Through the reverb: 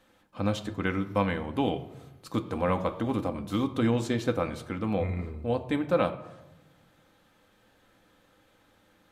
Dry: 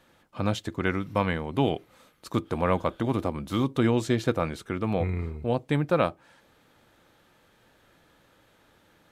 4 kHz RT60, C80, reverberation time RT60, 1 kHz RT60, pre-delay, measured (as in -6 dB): 0.55 s, 15.5 dB, 1.0 s, 0.95 s, 4 ms